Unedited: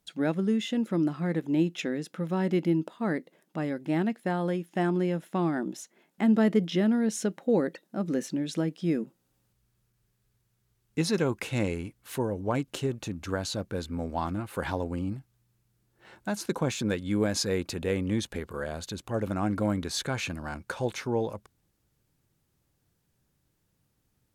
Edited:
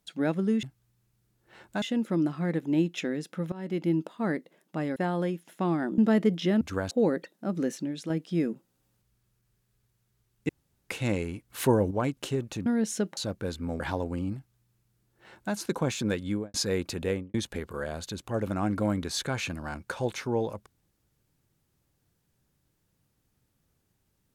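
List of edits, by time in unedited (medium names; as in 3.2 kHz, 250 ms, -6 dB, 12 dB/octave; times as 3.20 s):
2.33–2.76 s: fade in, from -18.5 dB
3.77–4.22 s: delete
4.74–5.22 s: delete
5.72–6.28 s: delete
6.91–7.42 s: swap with 13.17–13.47 s
8.16–8.61 s: fade out linear, to -6.5 dB
11.00–11.40 s: room tone
12.01–12.42 s: gain +7 dB
14.10–14.60 s: delete
15.15–16.34 s: copy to 0.63 s
17.05–17.34 s: studio fade out
17.87–18.14 s: studio fade out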